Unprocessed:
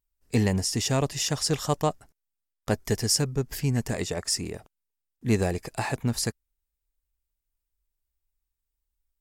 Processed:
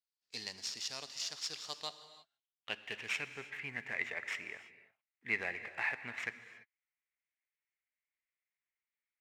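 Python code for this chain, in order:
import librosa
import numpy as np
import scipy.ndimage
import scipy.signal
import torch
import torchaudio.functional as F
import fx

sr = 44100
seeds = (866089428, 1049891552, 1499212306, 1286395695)

y = scipy.ndimage.median_filter(x, 9, mode='constant')
y = fx.filter_sweep_bandpass(y, sr, from_hz=4700.0, to_hz=2100.0, start_s=1.56, end_s=3.44, q=5.3)
y = fx.rev_gated(y, sr, seeds[0], gate_ms=360, shape='flat', drr_db=11.5)
y = y * librosa.db_to_amplitude(8.5)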